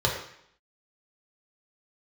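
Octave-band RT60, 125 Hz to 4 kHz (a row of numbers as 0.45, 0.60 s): 0.65, 0.70, 0.65, 0.70, 0.70, 0.70 s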